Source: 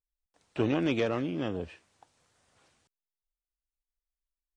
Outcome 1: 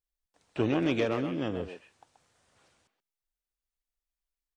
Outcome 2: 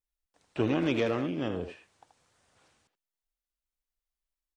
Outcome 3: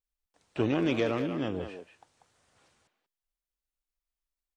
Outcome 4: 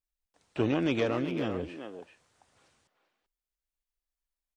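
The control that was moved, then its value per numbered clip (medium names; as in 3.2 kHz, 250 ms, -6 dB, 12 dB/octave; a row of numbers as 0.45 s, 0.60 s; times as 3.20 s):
speakerphone echo, time: 130 ms, 80 ms, 190 ms, 390 ms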